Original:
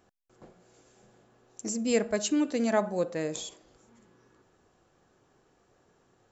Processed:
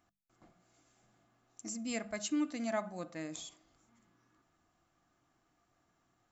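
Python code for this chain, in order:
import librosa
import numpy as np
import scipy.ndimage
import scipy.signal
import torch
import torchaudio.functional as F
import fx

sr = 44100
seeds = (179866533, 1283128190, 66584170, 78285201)

y = fx.peak_eq(x, sr, hz=430.0, db=-13.5, octaves=1.1)
y = fx.hum_notches(y, sr, base_hz=50, count=4)
y = fx.small_body(y, sr, hz=(310.0, 680.0, 1200.0, 2100.0), ring_ms=45, db=9)
y = y * librosa.db_to_amplitude(-7.5)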